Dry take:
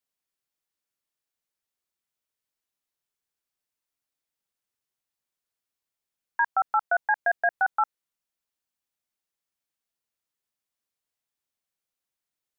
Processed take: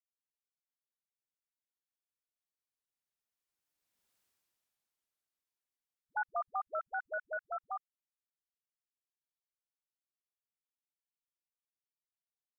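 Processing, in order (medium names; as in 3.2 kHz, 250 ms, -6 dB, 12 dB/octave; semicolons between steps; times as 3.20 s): Doppler pass-by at 4.08 s, 38 m/s, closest 7.9 m; phase dispersion highs, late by 86 ms, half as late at 360 Hz; trim +8 dB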